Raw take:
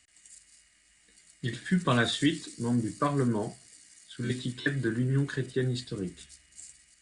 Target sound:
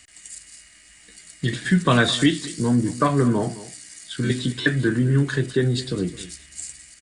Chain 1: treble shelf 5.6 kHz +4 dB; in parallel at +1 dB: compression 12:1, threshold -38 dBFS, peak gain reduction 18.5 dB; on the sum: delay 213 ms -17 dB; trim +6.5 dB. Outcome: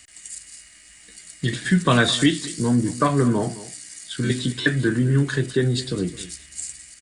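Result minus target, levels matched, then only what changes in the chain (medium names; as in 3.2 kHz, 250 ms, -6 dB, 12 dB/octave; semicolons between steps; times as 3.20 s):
8 kHz band +2.5 dB
remove: treble shelf 5.6 kHz +4 dB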